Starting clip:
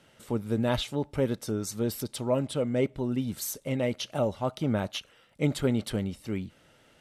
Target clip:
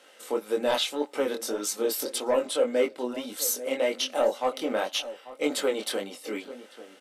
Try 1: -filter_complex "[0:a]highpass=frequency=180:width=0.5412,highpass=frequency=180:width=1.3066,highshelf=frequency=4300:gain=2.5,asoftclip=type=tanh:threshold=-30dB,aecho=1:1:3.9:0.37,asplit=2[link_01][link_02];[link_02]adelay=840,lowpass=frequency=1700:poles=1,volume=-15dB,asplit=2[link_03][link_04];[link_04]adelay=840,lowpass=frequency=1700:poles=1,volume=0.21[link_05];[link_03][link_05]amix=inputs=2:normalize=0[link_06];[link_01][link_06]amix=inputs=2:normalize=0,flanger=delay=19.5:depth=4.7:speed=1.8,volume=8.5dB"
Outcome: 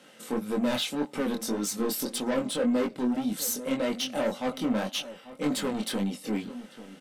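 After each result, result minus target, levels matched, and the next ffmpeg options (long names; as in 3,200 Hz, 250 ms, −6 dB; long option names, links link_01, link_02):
250 Hz band +8.0 dB; soft clipping: distortion +11 dB
-filter_complex "[0:a]highpass=frequency=360:width=0.5412,highpass=frequency=360:width=1.3066,highshelf=frequency=4300:gain=2.5,asoftclip=type=tanh:threshold=-30dB,aecho=1:1:3.9:0.37,asplit=2[link_01][link_02];[link_02]adelay=840,lowpass=frequency=1700:poles=1,volume=-15dB,asplit=2[link_03][link_04];[link_04]adelay=840,lowpass=frequency=1700:poles=1,volume=0.21[link_05];[link_03][link_05]amix=inputs=2:normalize=0[link_06];[link_01][link_06]amix=inputs=2:normalize=0,flanger=delay=19.5:depth=4.7:speed=1.8,volume=8.5dB"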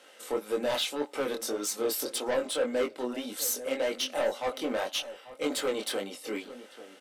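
soft clipping: distortion +11 dB
-filter_complex "[0:a]highpass=frequency=360:width=0.5412,highpass=frequency=360:width=1.3066,highshelf=frequency=4300:gain=2.5,asoftclip=type=tanh:threshold=-20dB,aecho=1:1:3.9:0.37,asplit=2[link_01][link_02];[link_02]adelay=840,lowpass=frequency=1700:poles=1,volume=-15dB,asplit=2[link_03][link_04];[link_04]adelay=840,lowpass=frequency=1700:poles=1,volume=0.21[link_05];[link_03][link_05]amix=inputs=2:normalize=0[link_06];[link_01][link_06]amix=inputs=2:normalize=0,flanger=delay=19.5:depth=4.7:speed=1.8,volume=8.5dB"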